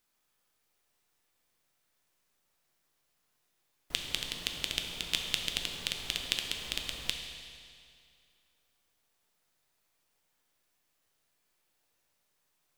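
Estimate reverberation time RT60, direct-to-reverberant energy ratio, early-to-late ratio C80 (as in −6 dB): 2.3 s, 3.0 dB, 5.5 dB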